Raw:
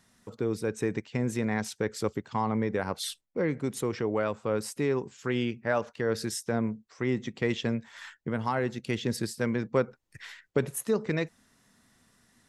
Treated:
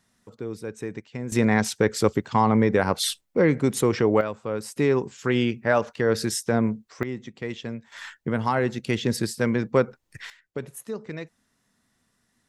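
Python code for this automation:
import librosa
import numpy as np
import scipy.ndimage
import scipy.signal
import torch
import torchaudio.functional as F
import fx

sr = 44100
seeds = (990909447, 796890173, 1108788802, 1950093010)

y = fx.gain(x, sr, db=fx.steps((0.0, -3.5), (1.32, 9.0), (4.21, 0.0), (4.76, 6.5), (7.03, -4.0), (7.92, 5.5), (10.3, -6.0)))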